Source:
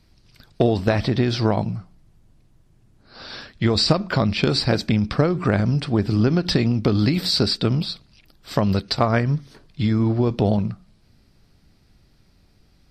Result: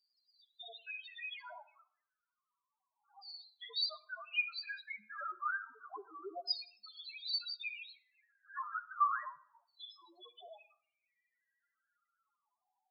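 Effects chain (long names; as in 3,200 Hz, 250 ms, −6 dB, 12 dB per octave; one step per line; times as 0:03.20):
0:07.64–0:09.28: compressing power law on the bin magnitudes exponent 0.54
high-pass filter 560 Hz 12 dB per octave
auto-filter band-pass saw down 0.31 Hz 850–4,800 Hz
spectral peaks only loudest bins 2
convolution reverb RT60 0.60 s, pre-delay 38 ms, DRR 17.5 dB
level +1.5 dB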